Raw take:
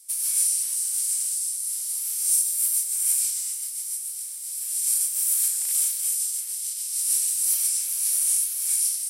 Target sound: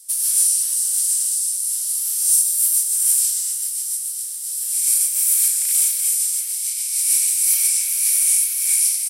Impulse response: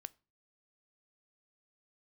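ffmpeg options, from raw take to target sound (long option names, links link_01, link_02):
-af "highpass=1100,asetnsamples=nb_out_samples=441:pad=0,asendcmd='4.73 equalizer g 5;6.66 equalizer g 11',equalizer=frequency=2300:width_type=o:width=0.25:gain=-8,acontrast=51,aecho=1:1:551:0.2"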